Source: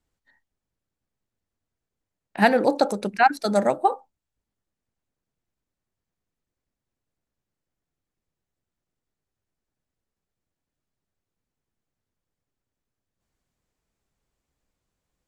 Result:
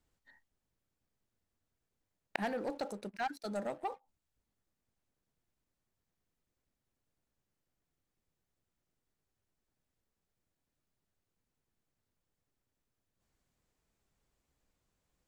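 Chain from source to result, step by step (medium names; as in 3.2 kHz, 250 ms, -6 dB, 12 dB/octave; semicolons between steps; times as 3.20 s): waveshaping leveller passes 2; inverted gate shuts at -20 dBFS, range -26 dB; trim +3 dB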